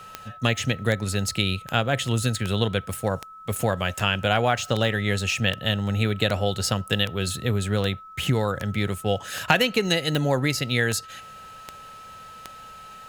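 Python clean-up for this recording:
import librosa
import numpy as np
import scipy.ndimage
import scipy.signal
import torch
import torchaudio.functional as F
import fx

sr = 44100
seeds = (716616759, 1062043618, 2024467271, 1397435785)

y = fx.fix_declick_ar(x, sr, threshold=10.0)
y = fx.notch(y, sr, hz=1300.0, q=30.0)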